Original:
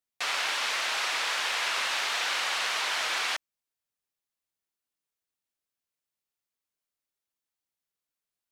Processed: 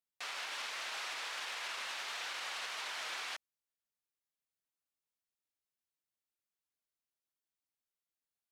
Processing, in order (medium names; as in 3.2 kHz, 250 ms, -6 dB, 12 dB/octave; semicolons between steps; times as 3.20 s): peak limiter -25.5 dBFS, peak gain reduction 8.5 dB; trim -7 dB